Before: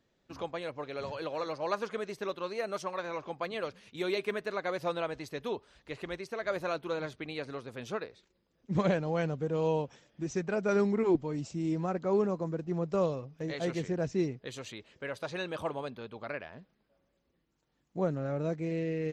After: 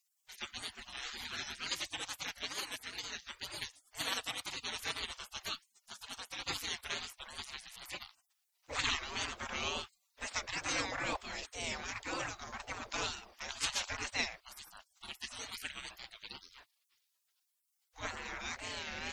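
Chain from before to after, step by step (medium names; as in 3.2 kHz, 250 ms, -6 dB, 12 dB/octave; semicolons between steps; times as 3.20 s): wow and flutter 130 cents; spectral gate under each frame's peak -30 dB weak; trim +15.5 dB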